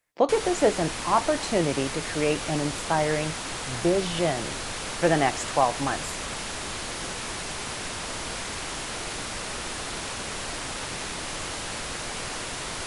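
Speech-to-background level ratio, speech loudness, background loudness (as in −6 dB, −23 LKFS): 6.0 dB, −26.0 LKFS, −32.0 LKFS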